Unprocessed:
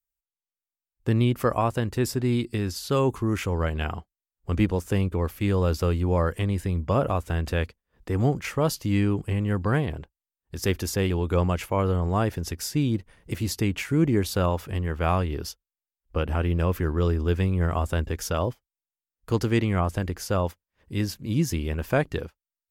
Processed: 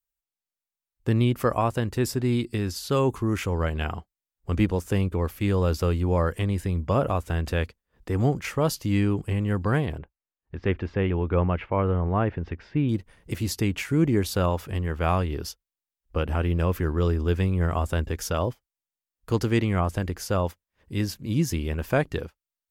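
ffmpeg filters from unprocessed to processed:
-filter_complex "[0:a]asettb=1/sr,asplit=3[s0][s1][s2];[s0]atrim=end=9.984[s3];[s1]atrim=start=9.98:end=12.89,asetpts=PTS-STARTPTS,afade=t=in:d=0.004:c=qsin,afade=t=out:st=2.906:d=0.004:c=qsin,lowpass=f=2600:w=0.5412,lowpass=f=2600:w=1.3066[s4];[s2]atrim=start=12.886[s5];[s3][s4]acrossfade=d=0.004:c1=hsin:c2=qsin[s6];[s6][s5]acrossfade=d=0.004:c1=qsin:c2=hsin"

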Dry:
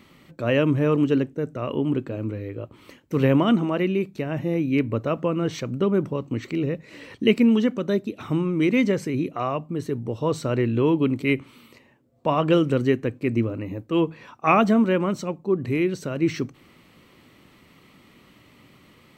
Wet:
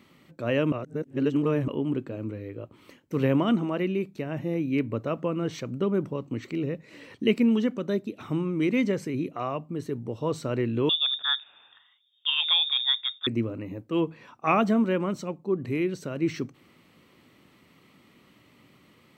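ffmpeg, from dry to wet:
-filter_complex "[0:a]asettb=1/sr,asplit=3[s0][s1][s2];[s0]atrim=end=10.894[s3];[s1]atrim=start=10.89:end=13.27,asetpts=PTS-STARTPTS,afade=t=in:d=0.004:c=qsin,afade=t=out:st=2.376:d=0.004:c=qsin,lowpass=f=3200:t=q:w=0.5098,lowpass=f=3200:t=q:w=0.6013,lowpass=f=3200:t=q:w=0.9,lowpass=f=3200:t=q:w=2.563,afreqshift=-3800[s4];[s2]atrim=start=13.266[s5];[s3][s4]acrossfade=d=0.004:c1=hsin:c2=qsin[s6];[s6][s5]acrossfade=d=0.004:c1=qsin:c2=hsin,asplit=3[s7][s8][s9];[s7]atrim=end=0.722[s10];[s8]atrim=start=0.718:end=1.682,asetpts=PTS-STARTPTS,areverse[s11];[s9]atrim=start=1.678[s12];[s10][s11]acrossfade=d=0.004:c1=hsin:c2=hsin[s13];[s13][s12]acrossfade=d=0.004:c1=hsin:c2=hsin,highpass=f=180:p=1,lowshelf=f=240:g=5.5,volume=0.562"

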